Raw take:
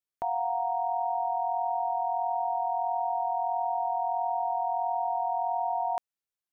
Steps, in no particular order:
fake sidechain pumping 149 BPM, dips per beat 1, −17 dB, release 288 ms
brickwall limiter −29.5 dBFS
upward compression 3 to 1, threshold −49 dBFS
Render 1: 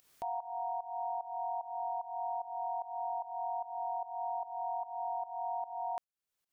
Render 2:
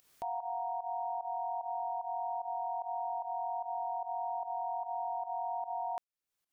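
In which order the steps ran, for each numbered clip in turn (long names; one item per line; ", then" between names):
brickwall limiter, then fake sidechain pumping, then upward compression
fake sidechain pumping, then brickwall limiter, then upward compression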